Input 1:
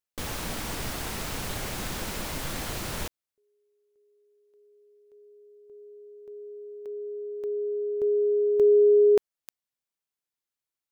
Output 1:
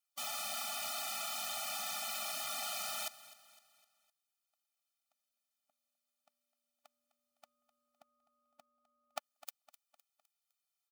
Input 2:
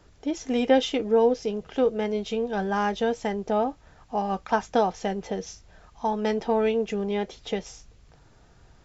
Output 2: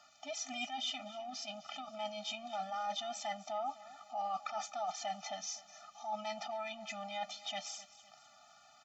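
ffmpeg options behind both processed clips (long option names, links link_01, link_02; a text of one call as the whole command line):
ffmpeg -i in.wav -af "highpass=830,bandreject=frequency=1900:width=5.6,areverse,acompressor=threshold=-44dB:ratio=20:attack=32:release=36:knee=6:detection=peak,areverse,aecho=1:1:255|510|765|1020:0.133|0.0613|0.0282|0.013,afftfilt=real='re*eq(mod(floor(b*sr/1024/290),2),0)':imag='im*eq(mod(floor(b*sr/1024/290),2),0)':win_size=1024:overlap=0.75,volume=5.5dB" out.wav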